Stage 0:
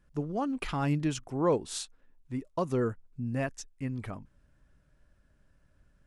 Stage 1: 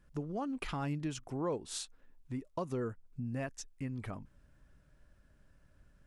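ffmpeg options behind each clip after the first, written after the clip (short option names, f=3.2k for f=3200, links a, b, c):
-af "acompressor=threshold=-41dB:ratio=2,volume=1dB"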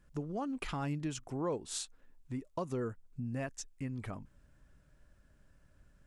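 -af "equalizer=f=7.4k:w=2.6:g=3.5"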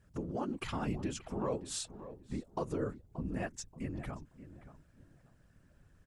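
-filter_complex "[0:a]afftfilt=real='hypot(re,im)*cos(2*PI*random(0))':imag='hypot(re,im)*sin(2*PI*random(1))':win_size=512:overlap=0.75,asplit=2[a][b];[b]adelay=579,lowpass=f=1.6k:p=1,volume=-13dB,asplit=2[c][d];[d]adelay=579,lowpass=f=1.6k:p=1,volume=0.26,asplit=2[e][f];[f]adelay=579,lowpass=f=1.6k:p=1,volume=0.26[g];[a][c][e][g]amix=inputs=4:normalize=0,volume=6dB"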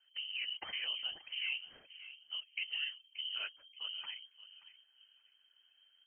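-filter_complex "[0:a]asplit=2[a][b];[b]aeval=exprs='sgn(val(0))*max(abs(val(0))-0.00299,0)':c=same,volume=-8.5dB[c];[a][c]amix=inputs=2:normalize=0,lowpass=f=2.7k:t=q:w=0.5098,lowpass=f=2.7k:t=q:w=0.6013,lowpass=f=2.7k:t=q:w=0.9,lowpass=f=2.7k:t=q:w=2.563,afreqshift=-3200,volume=-6dB"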